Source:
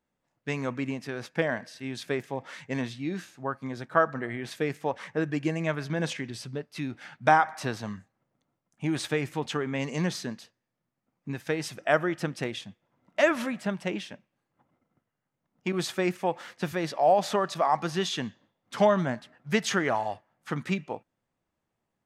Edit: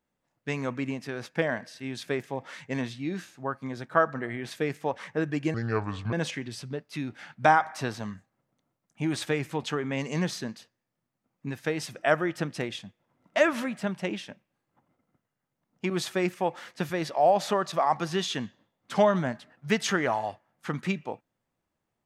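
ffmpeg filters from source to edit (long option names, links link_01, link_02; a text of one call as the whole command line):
ffmpeg -i in.wav -filter_complex "[0:a]asplit=3[link_01][link_02][link_03];[link_01]atrim=end=5.544[link_04];[link_02]atrim=start=5.54:end=5.95,asetpts=PTS-STARTPTS,asetrate=30870,aresample=44100[link_05];[link_03]atrim=start=5.946[link_06];[link_04][link_05]acrossfade=duration=0.004:curve1=hsin:curve2=hsin[link_07];[link_07][link_06]acrossfade=duration=0.004:curve1=hsin:curve2=hsin" out.wav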